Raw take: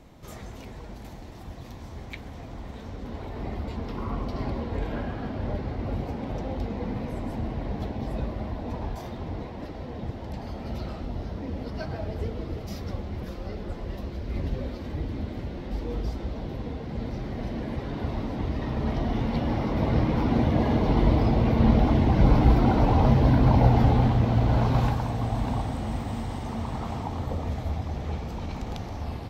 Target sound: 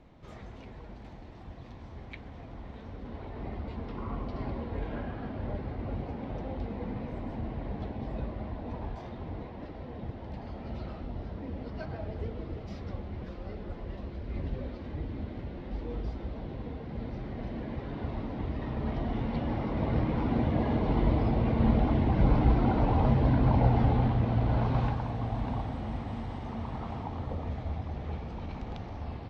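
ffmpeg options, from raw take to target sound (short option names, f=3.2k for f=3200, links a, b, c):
-af "lowpass=3.5k,volume=-5dB"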